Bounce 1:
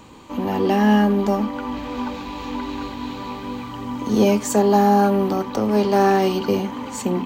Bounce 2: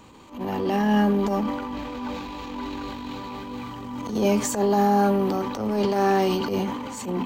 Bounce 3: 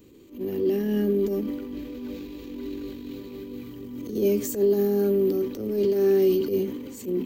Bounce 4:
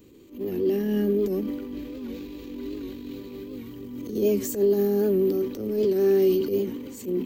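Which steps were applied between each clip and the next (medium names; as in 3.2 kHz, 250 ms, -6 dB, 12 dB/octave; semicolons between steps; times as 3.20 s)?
transient shaper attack -12 dB, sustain +7 dB; trim -4 dB
FFT filter 220 Hz 0 dB, 380 Hz +10 dB, 870 Hz -20 dB, 1.9 kHz -6 dB, 9.1 kHz -1 dB, 14 kHz +12 dB; trim -5 dB
warped record 78 rpm, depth 100 cents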